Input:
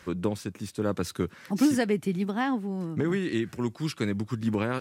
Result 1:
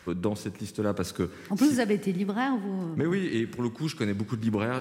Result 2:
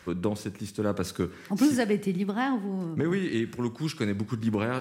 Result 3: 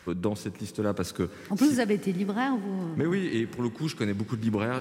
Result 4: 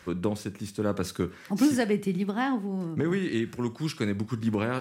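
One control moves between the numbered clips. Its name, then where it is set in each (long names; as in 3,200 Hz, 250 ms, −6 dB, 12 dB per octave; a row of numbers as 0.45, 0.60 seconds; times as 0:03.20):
four-comb reverb, RT60: 1.7, 0.75, 4.5, 0.35 seconds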